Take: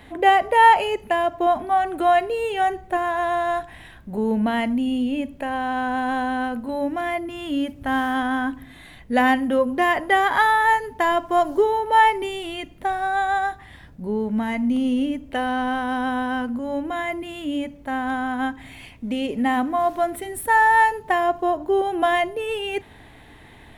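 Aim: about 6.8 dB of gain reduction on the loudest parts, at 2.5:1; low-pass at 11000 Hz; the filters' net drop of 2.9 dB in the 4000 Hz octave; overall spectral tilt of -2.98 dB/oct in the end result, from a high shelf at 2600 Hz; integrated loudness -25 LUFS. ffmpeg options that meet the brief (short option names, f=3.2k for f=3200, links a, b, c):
-af "lowpass=11k,highshelf=f=2.6k:g=4,equalizer=f=4k:t=o:g=-8,acompressor=threshold=-20dB:ratio=2.5,volume=-0.5dB"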